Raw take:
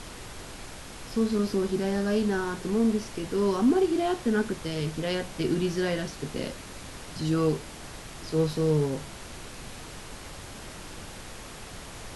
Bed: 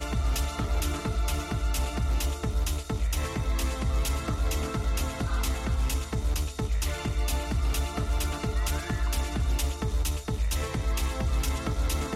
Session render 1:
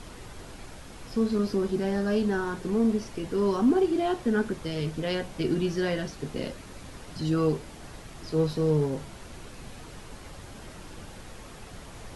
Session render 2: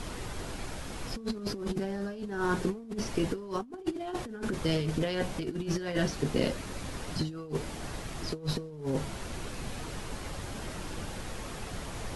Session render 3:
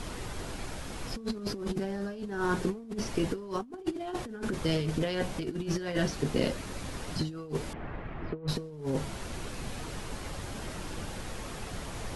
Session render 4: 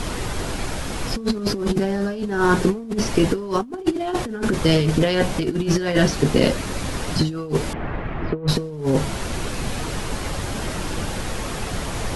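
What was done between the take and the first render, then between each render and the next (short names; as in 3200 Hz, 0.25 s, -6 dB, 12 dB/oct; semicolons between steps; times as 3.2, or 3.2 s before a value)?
denoiser 6 dB, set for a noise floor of -43 dBFS
negative-ratio compressor -31 dBFS, ratio -0.5
7.73–8.48 LPF 2300 Hz 24 dB/oct
gain +12 dB; limiter -3 dBFS, peak gain reduction 2 dB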